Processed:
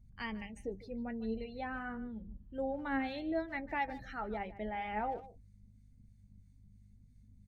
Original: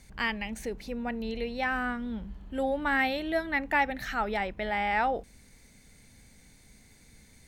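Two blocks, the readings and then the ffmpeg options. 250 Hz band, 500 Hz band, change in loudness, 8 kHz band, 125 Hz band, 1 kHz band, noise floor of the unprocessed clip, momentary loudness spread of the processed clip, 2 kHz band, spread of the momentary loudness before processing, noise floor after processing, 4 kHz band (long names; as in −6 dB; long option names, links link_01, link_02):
−5.5 dB, −7.5 dB, −9.0 dB, can't be measured, −5.5 dB, −9.0 dB, −58 dBFS, 8 LU, −13.0 dB, 10 LU, −62 dBFS, −13.5 dB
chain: -filter_complex "[0:a]equalizer=frequency=1900:width_type=o:width=2.7:gain=-7.5,acrossover=split=960[link_01][link_02];[link_01]aeval=exprs='val(0)*(1-0.5/2+0.5/2*cos(2*PI*3*n/s))':channel_layout=same[link_03];[link_02]aeval=exprs='val(0)*(1-0.5/2-0.5/2*cos(2*PI*3*n/s))':channel_layout=same[link_04];[link_03][link_04]amix=inputs=2:normalize=0,bandreject=frequency=50:width_type=h:width=6,bandreject=frequency=100:width_type=h:width=6,bandreject=frequency=150:width_type=h:width=6,bandreject=frequency=200:width_type=h:width=6,aeval=exprs='val(0)+0.00178*(sin(2*PI*50*n/s)+sin(2*PI*2*50*n/s)/2+sin(2*PI*3*50*n/s)/3+sin(2*PI*4*50*n/s)/4+sin(2*PI*5*50*n/s)/5)':channel_layout=same,flanger=delay=8.5:depth=2.6:regen=51:speed=0.84:shape=triangular,afftdn=noise_reduction=18:noise_floor=-53,highshelf=frequency=9900:gain=-9.5,asplit=2[link_05][link_06];[link_06]adelay=150,highpass=300,lowpass=3400,asoftclip=type=hard:threshold=-33dB,volume=-16dB[link_07];[link_05][link_07]amix=inputs=2:normalize=0,volume=1dB"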